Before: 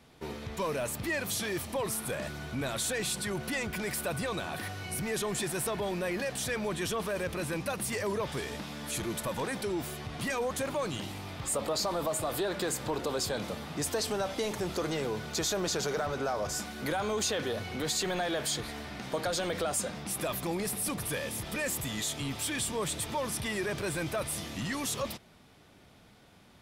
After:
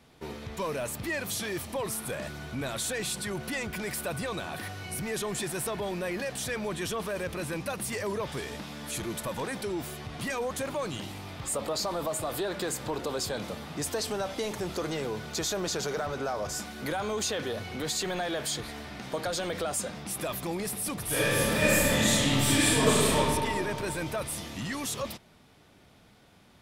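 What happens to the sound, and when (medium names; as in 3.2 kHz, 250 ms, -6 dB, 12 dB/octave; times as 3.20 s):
21.05–23.17 s: reverb throw, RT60 2.5 s, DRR -10.5 dB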